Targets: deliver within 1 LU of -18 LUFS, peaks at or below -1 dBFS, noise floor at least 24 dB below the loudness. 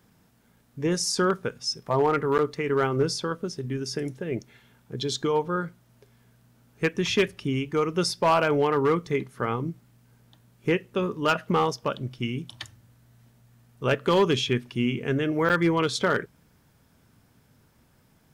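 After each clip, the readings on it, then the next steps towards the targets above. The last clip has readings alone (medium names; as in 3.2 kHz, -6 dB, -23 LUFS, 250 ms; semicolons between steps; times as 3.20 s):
clipped samples 0.5%; clipping level -15.0 dBFS; dropouts 2; longest dropout 8.5 ms; loudness -26.0 LUFS; peak level -15.0 dBFS; loudness target -18.0 LUFS
-> clip repair -15 dBFS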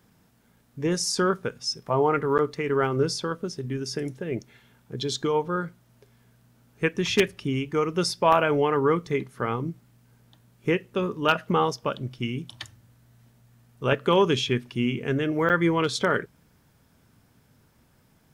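clipped samples 0.0%; dropouts 2; longest dropout 8.5 ms
-> interpolate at 2.38/15.49 s, 8.5 ms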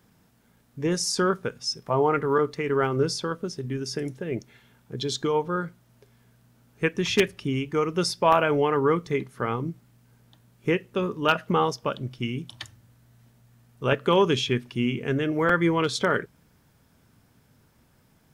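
dropouts 0; loudness -25.5 LUFS; peak level -6.0 dBFS; loudness target -18.0 LUFS
-> trim +7.5 dB; peak limiter -1 dBFS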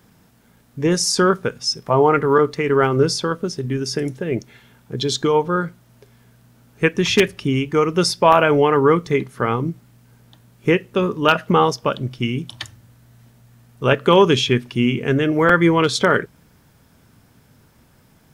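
loudness -18.0 LUFS; peak level -1.0 dBFS; noise floor -55 dBFS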